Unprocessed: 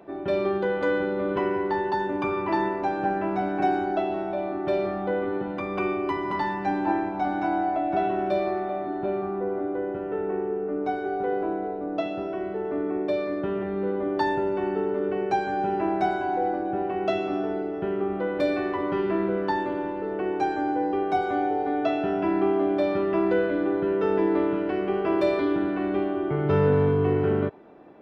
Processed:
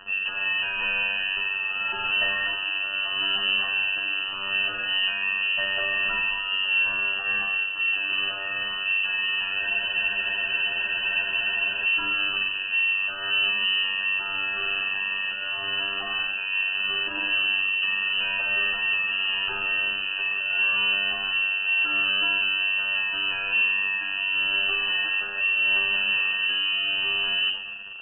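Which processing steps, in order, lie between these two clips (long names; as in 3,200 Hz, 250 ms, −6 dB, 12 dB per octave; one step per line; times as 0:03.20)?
low-shelf EQ 290 Hz −4 dB
mains-hum notches 50/100/150/200/250/300/350/400 Hz
in parallel at +2 dB: compressor whose output falls as the input rises −30 dBFS, ratio −1
on the sum: bit-depth reduction 6 bits, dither none
phases set to zero 96.3 Hz
rotating-speaker cabinet horn 0.8 Hz
gain into a clipping stage and back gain 26.5 dB
linear-phase brick-wall band-stop 470–1,100 Hz
on a send at −7 dB: convolution reverb RT60 1.4 s, pre-delay 6 ms
on the sum: voice inversion scrambler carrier 3,000 Hz
frozen spectrum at 0:09.62, 2.23 s
level +5.5 dB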